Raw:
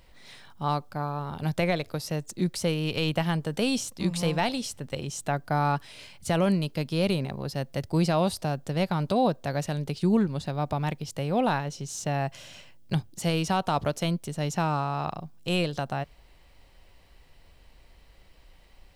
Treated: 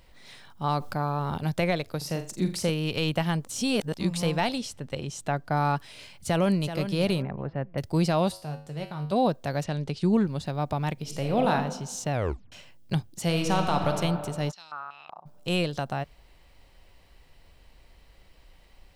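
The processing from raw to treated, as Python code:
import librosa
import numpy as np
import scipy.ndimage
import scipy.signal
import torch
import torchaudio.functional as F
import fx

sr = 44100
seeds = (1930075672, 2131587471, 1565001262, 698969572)

y = fx.env_flatten(x, sr, amount_pct=50, at=(0.64, 1.38))
y = fx.room_flutter(y, sr, wall_m=7.3, rt60_s=0.32, at=(1.97, 2.7))
y = fx.high_shelf(y, sr, hz=8100.0, db=-8.0, at=(4.58, 5.57))
y = fx.echo_throw(y, sr, start_s=6.13, length_s=0.58, ms=380, feedback_pct=30, wet_db=-10.0)
y = fx.lowpass(y, sr, hz=2100.0, slope=24, at=(7.22, 7.78))
y = fx.comb_fb(y, sr, f0_hz=50.0, decay_s=0.46, harmonics='odd', damping=0.0, mix_pct=80, at=(8.31, 9.11), fade=0.02)
y = fx.lowpass(y, sr, hz=fx.line((9.63, 5500.0), (10.23, 10000.0)), slope=12, at=(9.63, 10.23), fade=0.02)
y = fx.reverb_throw(y, sr, start_s=10.93, length_s=0.58, rt60_s=1.0, drr_db=3.5)
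y = fx.reverb_throw(y, sr, start_s=13.25, length_s=0.67, rt60_s=2.3, drr_db=3.5)
y = fx.filter_held_bandpass(y, sr, hz=5.3, low_hz=910.0, high_hz=4400.0, at=(14.5, 15.25), fade=0.02)
y = fx.edit(y, sr, fx.reverse_span(start_s=3.45, length_s=0.49),
    fx.tape_stop(start_s=12.12, length_s=0.4), tone=tone)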